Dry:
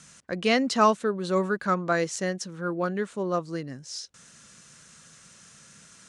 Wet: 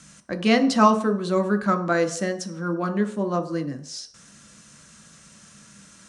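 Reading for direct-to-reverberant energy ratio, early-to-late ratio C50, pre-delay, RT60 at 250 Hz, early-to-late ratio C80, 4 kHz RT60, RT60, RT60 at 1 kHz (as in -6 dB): 5.0 dB, 12.0 dB, 3 ms, 0.50 s, 15.0 dB, 0.60 s, 0.60 s, 0.60 s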